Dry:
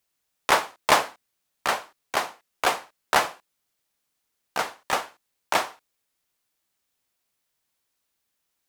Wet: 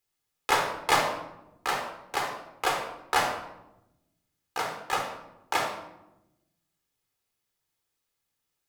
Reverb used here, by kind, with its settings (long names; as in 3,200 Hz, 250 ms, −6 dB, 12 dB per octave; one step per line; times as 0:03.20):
rectangular room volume 3,100 cubic metres, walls furnished, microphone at 4 metres
level −6.5 dB